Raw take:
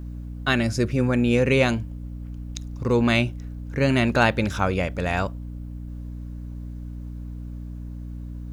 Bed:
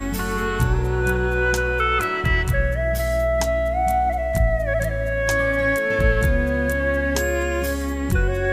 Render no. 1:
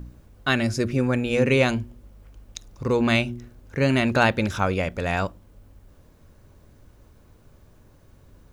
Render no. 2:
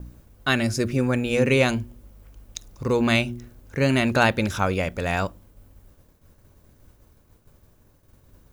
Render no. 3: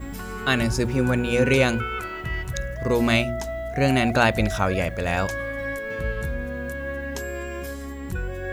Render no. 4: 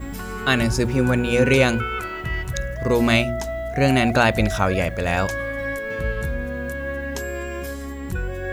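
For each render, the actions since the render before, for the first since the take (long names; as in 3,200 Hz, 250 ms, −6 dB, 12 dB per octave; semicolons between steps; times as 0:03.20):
hum removal 60 Hz, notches 6
downward expander −47 dBFS; high-shelf EQ 8,800 Hz +9.5 dB
mix in bed −9.5 dB
level +2.5 dB; brickwall limiter −3 dBFS, peak gain reduction 2 dB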